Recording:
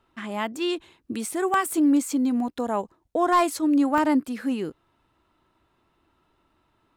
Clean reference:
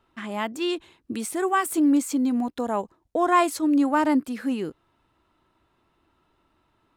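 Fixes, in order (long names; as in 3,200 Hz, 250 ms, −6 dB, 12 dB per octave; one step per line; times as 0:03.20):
clipped peaks rebuilt −11.5 dBFS
repair the gap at 0:01.54/0:03.98, 1.3 ms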